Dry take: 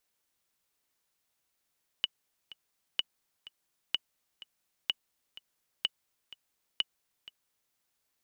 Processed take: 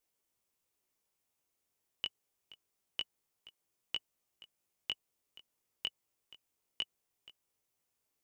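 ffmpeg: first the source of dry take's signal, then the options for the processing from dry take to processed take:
-f lavfi -i "aevalsrc='pow(10,(-14-19*gte(mod(t,2*60/126),60/126))/20)*sin(2*PI*2950*mod(t,60/126))*exp(-6.91*mod(t,60/126)/0.03)':duration=5.71:sample_rate=44100"
-af "flanger=delay=17.5:depth=3.2:speed=0.27,equalizer=frequency=100:width_type=o:width=0.67:gain=3,equalizer=frequency=400:width_type=o:width=0.67:gain=4,equalizer=frequency=1600:width_type=o:width=0.67:gain=-5,equalizer=frequency=4000:width_type=o:width=0.67:gain=-5"

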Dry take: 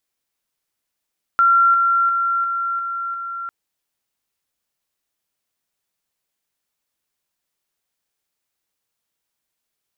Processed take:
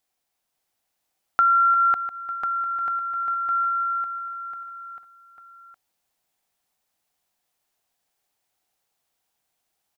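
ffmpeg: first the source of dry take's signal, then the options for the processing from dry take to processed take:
-f lavfi -i "aevalsrc='pow(10,(-10.5-3*floor(t/0.35))/20)*sin(2*PI*1370*t)':duration=2.1:sample_rate=44100"
-filter_complex "[0:a]equalizer=frequency=750:width=3.7:gain=10,acompressor=threshold=-16dB:ratio=6,asplit=2[link_01][link_02];[link_02]aecho=0:1:550|1045|1490|1891|2252:0.631|0.398|0.251|0.158|0.1[link_03];[link_01][link_03]amix=inputs=2:normalize=0"

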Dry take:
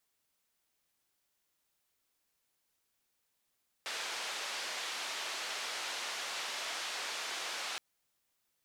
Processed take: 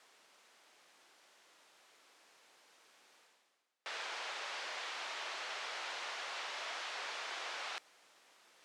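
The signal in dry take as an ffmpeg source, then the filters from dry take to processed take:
-f lavfi -i "anoisesrc=color=white:duration=3.92:sample_rate=44100:seed=1,highpass=frequency=560,lowpass=frequency=4700,volume=-27.7dB"
-af "highshelf=frequency=3500:gain=-9.5,areverse,acompressor=mode=upward:threshold=-44dB:ratio=2.5,areverse,highpass=400,lowpass=7500"

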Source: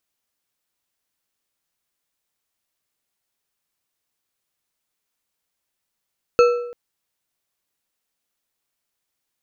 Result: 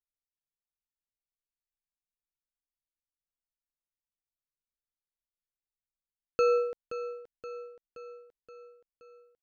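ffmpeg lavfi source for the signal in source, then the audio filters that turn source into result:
-f lavfi -i "aevalsrc='0.398*pow(10,-3*t/0.77)*sin(2*PI*482*t)+0.178*pow(10,-3*t/0.568)*sin(2*PI*1328.9*t)+0.0794*pow(10,-3*t/0.464)*sin(2*PI*2604.7*t)+0.0355*pow(10,-3*t/0.399)*sin(2*PI*4305.7*t)+0.0158*pow(10,-3*t/0.354)*sin(2*PI*6429.9*t)':duration=0.34:sample_rate=44100"
-af "anlmdn=0.00631,areverse,acompressor=threshold=-22dB:ratio=10,areverse,aecho=1:1:524|1048|1572|2096|2620|3144:0.251|0.146|0.0845|0.049|0.0284|0.0165"

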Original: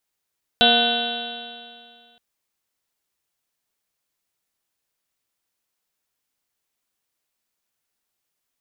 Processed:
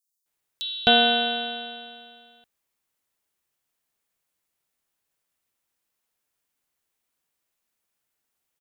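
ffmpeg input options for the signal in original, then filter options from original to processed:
-f lavfi -i "aevalsrc='0.0708*pow(10,-3*t/2.18)*sin(2*PI*234.42*t)+0.0708*pow(10,-3*t/2.18)*sin(2*PI*471.36*t)+0.141*pow(10,-3*t/2.18)*sin(2*PI*713.28*t)+0.0158*pow(10,-3*t/2.18)*sin(2*PI*962.58*t)+0.0106*pow(10,-3*t/2.18)*sin(2*PI*1221.52*t)+0.0841*pow(10,-3*t/2.18)*sin(2*PI*1492.21*t)+0.0126*pow(10,-3*t/2.18)*sin(2*PI*1776.61*t)+0.01*pow(10,-3*t/2.18)*sin(2*PI*2076.49*t)+0.00944*pow(10,-3*t/2.18)*sin(2*PI*2393.44*t)+0.075*pow(10,-3*t/2.18)*sin(2*PI*2728.89*t)+0.112*pow(10,-3*t/2.18)*sin(2*PI*3084.08*t)+0.126*pow(10,-3*t/2.18)*sin(2*PI*3460.11*t)+0.133*pow(10,-3*t/2.18)*sin(2*PI*3857.95*t)+0.0133*pow(10,-3*t/2.18)*sin(2*PI*4278.41*t)':duration=1.57:sample_rate=44100"
-filter_complex "[0:a]acrossover=split=4800[link_01][link_02];[link_01]adelay=260[link_03];[link_03][link_02]amix=inputs=2:normalize=0"

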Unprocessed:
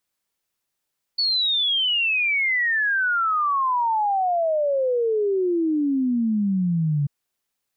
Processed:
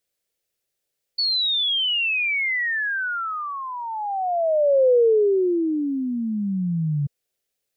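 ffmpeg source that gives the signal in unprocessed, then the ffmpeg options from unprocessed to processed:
-f lavfi -i "aevalsrc='0.119*clip(min(t,5.89-t)/0.01,0,1)*sin(2*PI*4500*5.89/log(140/4500)*(exp(log(140/4500)*t/5.89)-1))':duration=5.89:sample_rate=44100"
-af "equalizer=frequency=250:width_type=o:width=1:gain=-5,equalizer=frequency=500:width_type=o:width=1:gain=9,equalizer=frequency=1000:width_type=o:width=1:gain=-11"

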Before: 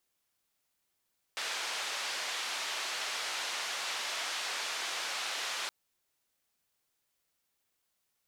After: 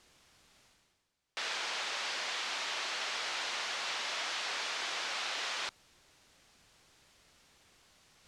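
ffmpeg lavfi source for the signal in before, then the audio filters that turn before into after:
-f lavfi -i "anoisesrc=color=white:duration=4.32:sample_rate=44100:seed=1,highpass=frequency=670,lowpass=frequency=4700,volume=-24.6dB"
-af "lowpass=6200,lowshelf=frequency=180:gain=7,areverse,acompressor=mode=upward:threshold=-48dB:ratio=2.5,areverse"

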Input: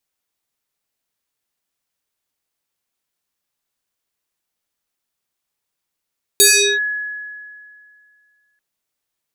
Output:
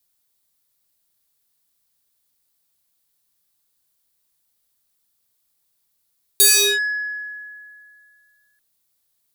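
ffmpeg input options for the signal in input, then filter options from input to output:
-f lavfi -i "aevalsrc='0.501*pow(10,-3*t/2.25)*sin(2*PI*1690*t+5.5*clip(1-t/0.39,0,1)*sin(2*PI*1.24*1690*t))':duration=2.19:sample_rate=44100"
-filter_complex "[0:a]acrossover=split=190|6300[link_01][link_02][link_03];[link_01]acontrast=56[link_04];[link_04][link_02][link_03]amix=inputs=3:normalize=0,asoftclip=type=tanh:threshold=-16.5dB,aexciter=amount=1.6:drive=7.6:freq=3600"

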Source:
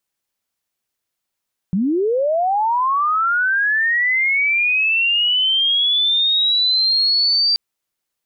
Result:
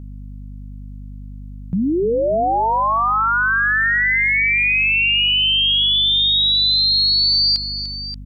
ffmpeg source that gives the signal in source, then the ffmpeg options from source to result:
-f lavfi -i "aevalsrc='pow(10,(-15+2*t/5.83)/20)*sin(2*PI*(170*t+4530*t*t/(2*5.83)))':duration=5.83:sample_rate=44100"
-filter_complex "[0:a]asplit=2[link_01][link_02];[link_02]aecho=0:1:297|582:0.237|0.224[link_03];[link_01][link_03]amix=inputs=2:normalize=0,aeval=exprs='val(0)+0.0251*(sin(2*PI*50*n/s)+sin(2*PI*2*50*n/s)/2+sin(2*PI*3*50*n/s)/3+sin(2*PI*4*50*n/s)/4+sin(2*PI*5*50*n/s)/5)':channel_layout=same"

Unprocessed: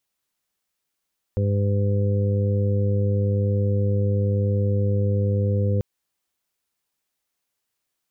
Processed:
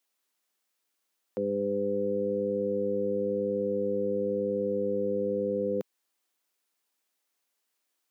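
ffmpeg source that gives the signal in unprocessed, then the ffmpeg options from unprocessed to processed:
-f lavfi -i "aevalsrc='0.112*sin(2*PI*101*t)+0.0398*sin(2*PI*202*t)+0.0141*sin(2*PI*303*t)+0.0237*sin(2*PI*404*t)+0.0376*sin(2*PI*505*t)':duration=4.44:sample_rate=44100"
-af "highpass=frequency=230:width=0.5412,highpass=frequency=230:width=1.3066"

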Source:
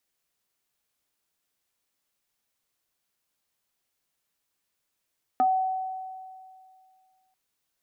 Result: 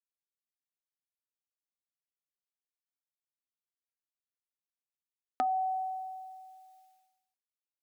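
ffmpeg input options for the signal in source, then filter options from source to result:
-f lavfi -i "aevalsrc='0.133*pow(10,-3*t/2.23)*sin(2*PI*754*t+0.62*pow(10,-3*t/0.14)*sin(2*PI*0.66*754*t))':duration=1.94:sample_rate=44100"
-af "agate=range=-33dB:threshold=-59dB:ratio=3:detection=peak,tiltshelf=frequency=1200:gain=-5,acompressor=threshold=-29dB:ratio=3"

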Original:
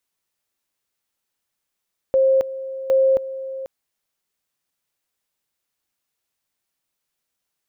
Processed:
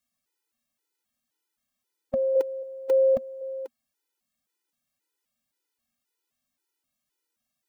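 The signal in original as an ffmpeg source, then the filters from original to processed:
-f lavfi -i "aevalsrc='pow(10,(-12.5-14.5*gte(mod(t,0.76),0.27))/20)*sin(2*PI*532*t)':duration=1.52:sample_rate=44100"
-af "equalizer=frequency=240:width_type=o:width=0.42:gain=11,afftfilt=real='re*gt(sin(2*PI*1.9*pts/sr)*(1-2*mod(floor(b*sr/1024/260),2)),0)':imag='im*gt(sin(2*PI*1.9*pts/sr)*(1-2*mod(floor(b*sr/1024/260),2)),0)':win_size=1024:overlap=0.75"

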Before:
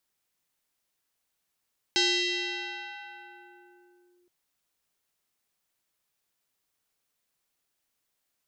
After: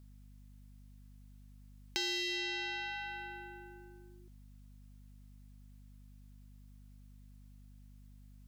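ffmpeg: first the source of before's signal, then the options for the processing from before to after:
-f lavfi -i "aevalsrc='0.1*pow(10,-3*t/3.1)*sin(2*PI*355*t+4.4*clip(1-t/2.27,0,1)*sin(2*PI*3.31*355*t))':duration=2.32:sample_rate=44100"
-filter_complex "[0:a]asplit=2[link_01][link_02];[link_02]asoftclip=type=hard:threshold=-29.5dB,volume=-7.5dB[link_03];[link_01][link_03]amix=inputs=2:normalize=0,aeval=exprs='val(0)+0.00178*(sin(2*PI*50*n/s)+sin(2*PI*2*50*n/s)/2+sin(2*PI*3*50*n/s)/3+sin(2*PI*4*50*n/s)/4+sin(2*PI*5*50*n/s)/5)':channel_layout=same,acompressor=threshold=-39dB:ratio=3"

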